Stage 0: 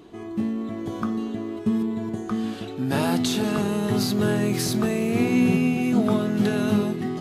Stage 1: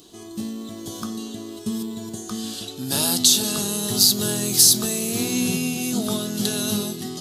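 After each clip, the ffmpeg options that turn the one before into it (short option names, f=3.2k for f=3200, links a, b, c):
-af "aexciter=amount=9.7:drive=4.6:freq=3.3k,volume=-4.5dB"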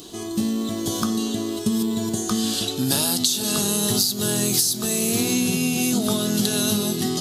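-af "acompressor=threshold=-26dB:ratio=16,volume=8.5dB"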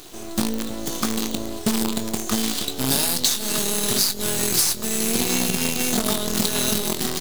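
-filter_complex "[0:a]highpass=120,acrusher=bits=4:dc=4:mix=0:aa=0.000001,asplit=2[a][b];[b]adelay=22,volume=-11dB[c];[a][c]amix=inputs=2:normalize=0"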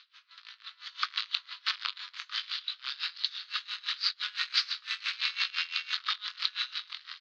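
-af "asuperpass=centerf=2400:order=12:qfactor=0.69,dynaudnorm=f=330:g=5:m=11.5dB,aeval=exprs='val(0)*pow(10,-22*(0.5-0.5*cos(2*PI*5.9*n/s))/20)':c=same,volume=-6dB"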